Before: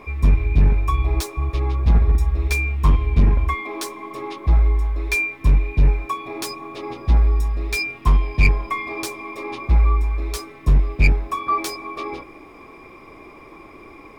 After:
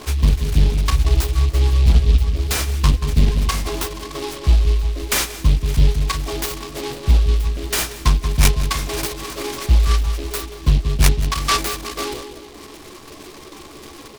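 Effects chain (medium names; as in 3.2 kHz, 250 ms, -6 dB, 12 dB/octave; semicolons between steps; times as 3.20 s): reverb removal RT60 0.96 s; in parallel at +1.5 dB: compression, threshold -24 dBFS, peak gain reduction 13 dB; on the sum: doubling 14 ms -6 dB; on a send: filtered feedback delay 183 ms, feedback 54%, low-pass 900 Hz, level -7 dB; on the sum: delay time shaken by noise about 3.2 kHz, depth 0.12 ms; trim -2 dB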